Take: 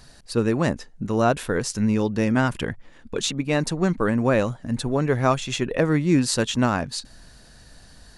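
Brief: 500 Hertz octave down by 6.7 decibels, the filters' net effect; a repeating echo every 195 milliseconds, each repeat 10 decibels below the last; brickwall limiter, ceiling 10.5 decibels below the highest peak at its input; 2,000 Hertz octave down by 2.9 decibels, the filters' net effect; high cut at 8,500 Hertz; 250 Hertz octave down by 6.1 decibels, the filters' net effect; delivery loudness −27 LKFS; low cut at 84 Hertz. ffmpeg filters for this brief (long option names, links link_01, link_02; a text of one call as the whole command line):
ffmpeg -i in.wav -af "highpass=84,lowpass=8500,equalizer=frequency=250:width_type=o:gain=-6,equalizer=frequency=500:width_type=o:gain=-6.5,equalizer=frequency=2000:width_type=o:gain=-3.5,alimiter=limit=-19dB:level=0:latency=1,aecho=1:1:195|390|585|780:0.316|0.101|0.0324|0.0104,volume=2.5dB" out.wav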